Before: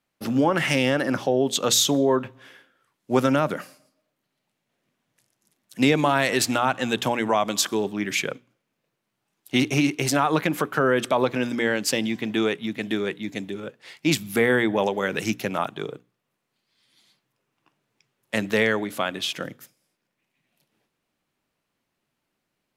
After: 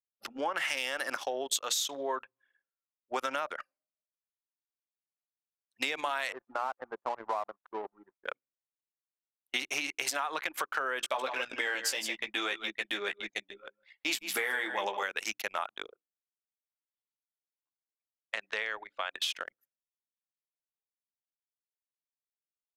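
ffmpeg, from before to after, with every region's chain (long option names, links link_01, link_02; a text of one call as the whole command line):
ffmpeg -i in.wav -filter_complex "[0:a]asettb=1/sr,asplit=3[link_01][link_02][link_03];[link_01]atrim=end=0.774[link_04];[link_02]atrim=start=0.77:end=1.6,asetpts=PTS-STARTPTS,afade=type=in:duration=0.004:curve=qsin,afade=type=out:start_time=0.826:duration=0.004:curve=qsin,highshelf=frequency=5400:gain=10,asoftclip=type=hard:threshold=-9dB[link_05];[link_03]atrim=start=1.596[link_06];[link_04][link_05]acrossfade=duration=0.004:curve1=hsin:curve2=qsin[link_07];[link_07][link_06]acrossfade=duration=0.004:curve1=qsin:curve2=hsin,asettb=1/sr,asplit=3[link_08][link_09][link_10];[link_08]atrim=end=6.324[link_11];[link_09]atrim=start=6.32:end=8.26,asetpts=PTS-STARTPTS,afade=type=in:duration=0.004:curve=qsin,afade=type=out:start_time=1.936:duration=0.004:curve=qsin,lowpass=frequency=1200:width=0.5412,lowpass=frequency=1200:width=1.3066,aeval=exprs='sgn(val(0))*max(abs(val(0))-0.0126,0)':channel_layout=same[link_12];[link_10]atrim=start=8.256[link_13];[link_11][link_12]acrossfade=duration=0.004:curve1=hsin:curve2=qsin[link_14];[link_14][link_13]acrossfade=duration=0.004:curve1=qsin:curve2=hsin,asettb=1/sr,asplit=3[link_15][link_16][link_17];[link_15]atrim=end=10.994[link_18];[link_16]atrim=start=10.99:end=15.03,asetpts=PTS-STARTPTS,afade=type=in:duration=0.004:curve=qsin,afade=type=out:start_time=4.036:duration=0.004:curve=qsin,aphaser=in_gain=1:out_gain=1:delay=3.7:decay=0.3:speed=1.8:type=sinusoidal,asplit=2[link_19][link_20];[link_20]adelay=15,volume=-6dB[link_21];[link_19][link_21]amix=inputs=2:normalize=0,atrim=end_sample=178164,aecho=1:1:157:0.299,atrim=end_sample=178164[link_22];[link_17]atrim=start=15.026[link_23];[link_18][link_22]acrossfade=duration=0.004:curve1=hsin:curve2=qsin[link_24];[link_24][link_23]acrossfade=duration=0.004:curve1=qsin:curve2=hsin,asettb=1/sr,asplit=3[link_25][link_26][link_27];[link_25]atrim=end=15.864[link_28];[link_26]atrim=start=15.86:end=19.15,asetpts=PTS-STARTPTS,afade=type=in:duration=0.004:curve=qsin,afade=type=out:start_time=3.286:duration=0.004:curve=qsin,highpass=230,lowpass=5700,acompressor=threshold=-27dB:ratio=2:attack=3.2:release=140:knee=1:detection=peak[link_29];[link_27]atrim=start=19.146[link_30];[link_28][link_29]acrossfade=duration=0.004:curve1=hsin:curve2=qsin[link_31];[link_31][link_30]acrossfade=duration=0.004:curve1=qsin:curve2=hsin,highpass=850,anlmdn=3.98,acompressor=threshold=-29dB:ratio=6" out.wav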